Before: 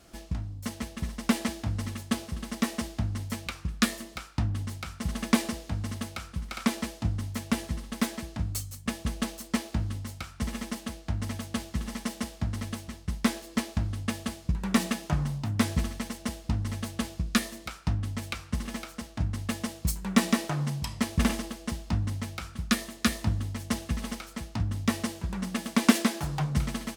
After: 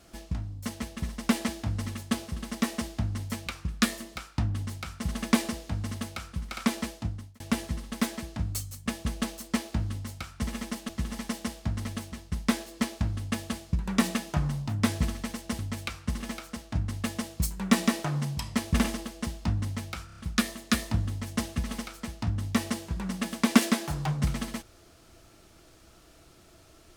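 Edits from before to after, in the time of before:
0:06.88–0:07.40: fade out
0:10.89–0:11.65: remove
0:16.35–0:18.04: remove
0:22.51: stutter 0.03 s, 5 plays

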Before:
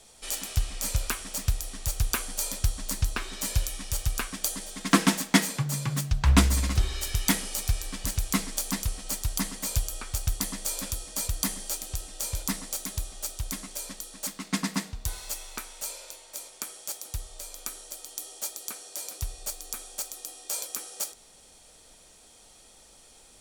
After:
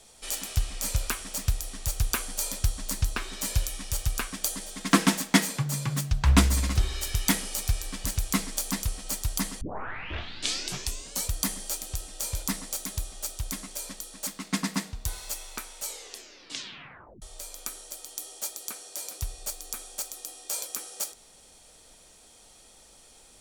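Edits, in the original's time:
0:09.61: tape start 1.68 s
0:15.82: tape stop 1.40 s

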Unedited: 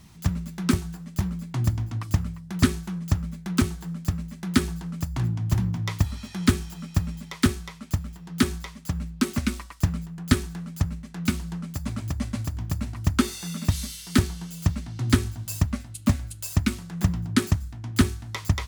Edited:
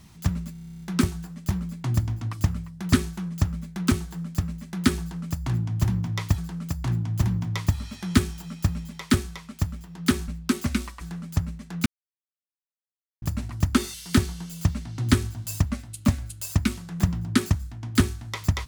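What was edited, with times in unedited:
0:00.52: stutter 0.03 s, 11 plays
0:04.70–0:06.08: repeat, 2 plays
0:08.60–0:09.00: remove
0:09.73–0:10.45: remove
0:11.30–0:12.66: silence
0:13.38–0:13.95: remove

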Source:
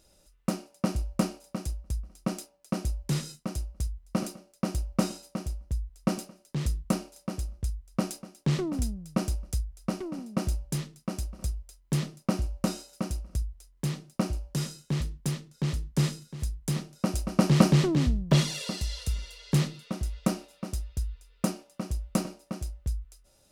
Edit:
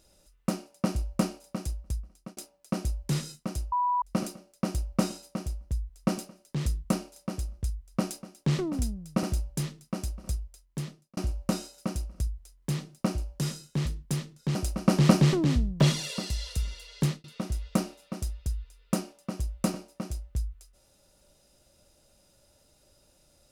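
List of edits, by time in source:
0:01.91–0:02.37: fade out
0:03.72–0:04.02: beep over 983 Hz −23 dBFS
0:09.23–0:10.38: remove
0:11.49–0:12.32: fade out
0:15.70–0:17.06: remove
0:19.50–0:19.75: fade out

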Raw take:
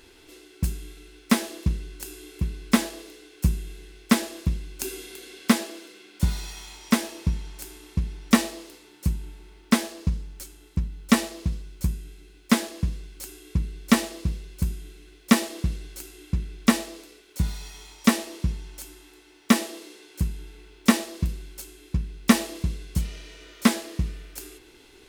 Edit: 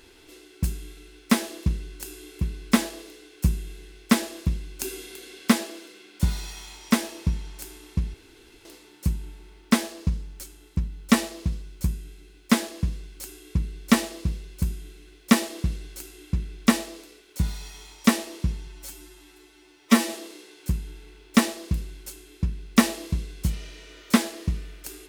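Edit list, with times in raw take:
0:08.14–0:08.65: fill with room tone
0:18.67–0:19.64: time-stretch 1.5×

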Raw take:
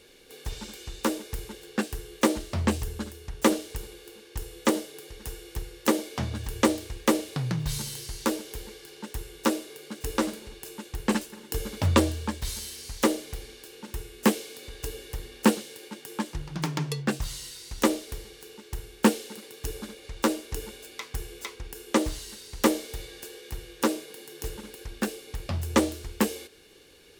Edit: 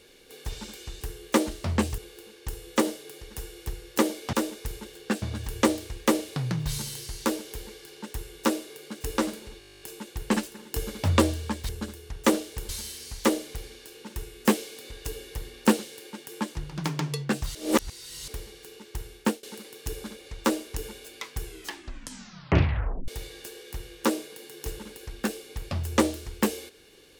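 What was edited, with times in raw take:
0:01.01–0:01.90: move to 0:06.22
0:02.87–0:03.87: move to 0:12.47
0:10.59: stutter 0.02 s, 12 plays
0:17.33–0:18.06: reverse
0:18.92–0:19.21: fade out, to −23.5 dB
0:21.22: tape stop 1.64 s

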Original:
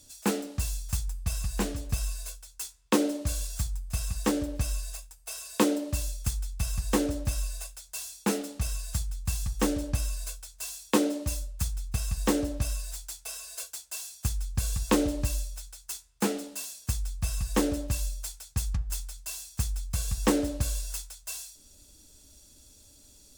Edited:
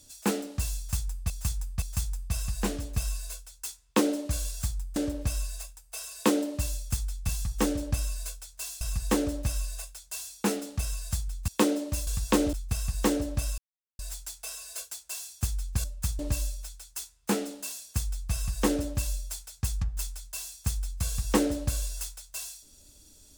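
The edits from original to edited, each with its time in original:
0:00.78–0:01.30: repeat, 3 plays
0:03.92–0:04.30: remove
0:09.30–0:10.82: move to 0:06.63
0:11.41–0:11.76: swap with 0:14.66–0:15.12
0:12.81: splice in silence 0.41 s

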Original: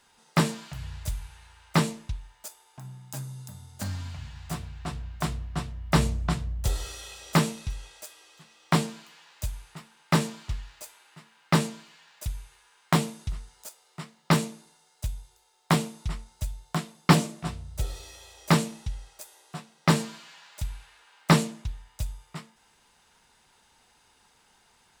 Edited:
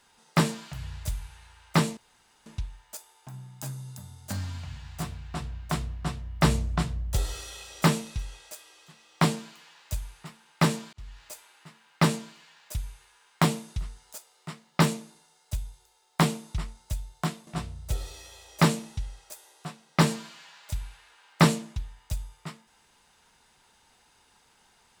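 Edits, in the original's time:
0:01.97: splice in room tone 0.49 s
0:10.44–0:10.76: fade in
0:16.98–0:17.36: remove

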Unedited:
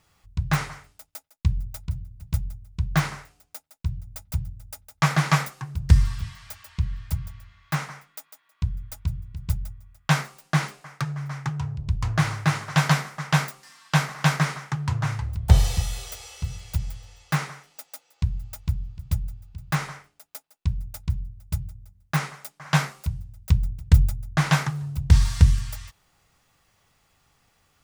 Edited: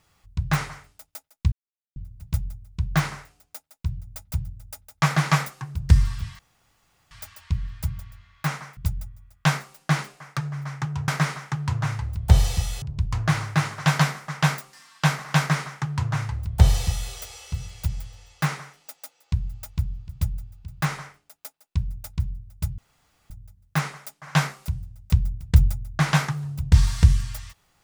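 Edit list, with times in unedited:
0:01.52–0:01.96: silence
0:06.39: splice in room tone 0.72 s
0:08.05–0:09.41: remove
0:14.28–0:16.02: duplicate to 0:11.72
0:21.68: splice in room tone 0.52 s

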